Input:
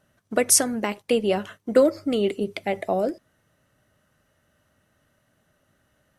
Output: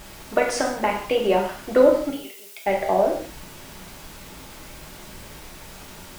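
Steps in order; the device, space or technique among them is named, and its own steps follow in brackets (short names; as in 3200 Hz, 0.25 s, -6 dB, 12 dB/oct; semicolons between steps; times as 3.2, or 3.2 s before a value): horn gramophone (BPF 290–3200 Hz; bell 910 Hz +6 dB; wow and flutter; pink noise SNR 17 dB); 2.1–2.66 differentiator; non-linear reverb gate 0.22 s falling, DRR -0.5 dB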